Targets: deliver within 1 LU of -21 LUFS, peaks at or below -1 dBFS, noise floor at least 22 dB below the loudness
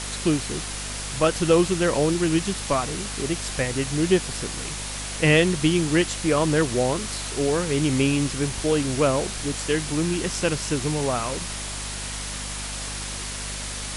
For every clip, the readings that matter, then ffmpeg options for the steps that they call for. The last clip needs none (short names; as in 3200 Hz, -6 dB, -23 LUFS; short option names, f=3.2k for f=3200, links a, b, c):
hum 50 Hz; harmonics up to 250 Hz; hum level -34 dBFS; noise floor -32 dBFS; noise floor target -46 dBFS; loudness -24.0 LUFS; peak -5.5 dBFS; loudness target -21.0 LUFS
-> -af "bandreject=f=50:t=h:w=4,bandreject=f=100:t=h:w=4,bandreject=f=150:t=h:w=4,bandreject=f=200:t=h:w=4,bandreject=f=250:t=h:w=4"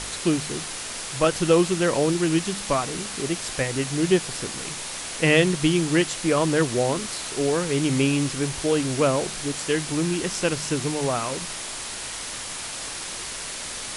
hum none; noise floor -34 dBFS; noise floor target -46 dBFS
-> -af "afftdn=nr=12:nf=-34"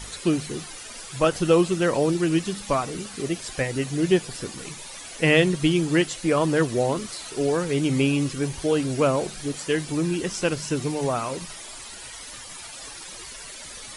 noise floor -40 dBFS; noise floor target -46 dBFS
-> -af "afftdn=nr=6:nf=-40"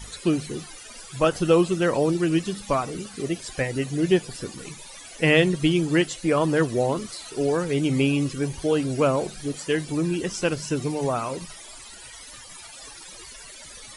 noise floor -43 dBFS; noise floor target -46 dBFS
-> -af "afftdn=nr=6:nf=-43"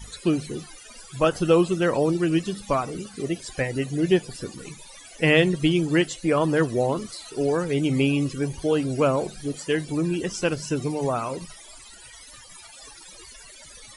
noise floor -46 dBFS; loudness -24.0 LUFS; peak -5.0 dBFS; loudness target -21.0 LUFS
-> -af "volume=3dB"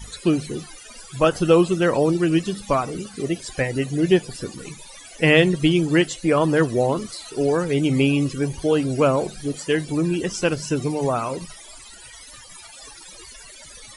loudness -21.0 LUFS; peak -2.0 dBFS; noise floor -43 dBFS